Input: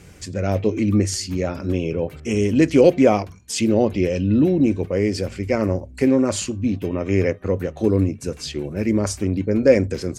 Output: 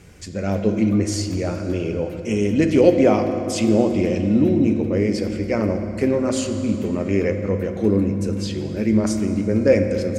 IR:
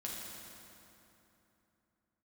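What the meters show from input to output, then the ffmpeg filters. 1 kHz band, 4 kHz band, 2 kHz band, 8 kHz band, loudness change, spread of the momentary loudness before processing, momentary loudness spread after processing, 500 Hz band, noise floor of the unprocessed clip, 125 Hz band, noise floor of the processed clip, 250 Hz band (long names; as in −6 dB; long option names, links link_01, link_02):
−0.5 dB, −2.0 dB, −1.0 dB, −2.5 dB, 0.0 dB, 9 LU, 8 LU, −0.5 dB, −42 dBFS, −0.5 dB, −30 dBFS, +1.0 dB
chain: -filter_complex "[0:a]asplit=2[link_01][link_02];[1:a]atrim=start_sample=2205,highshelf=frequency=7000:gain=-10.5[link_03];[link_02][link_03]afir=irnorm=-1:irlink=0,volume=-0.5dB[link_04];[link_01][link_04]amix=inputs=2:normalize=0,volume=-5dB"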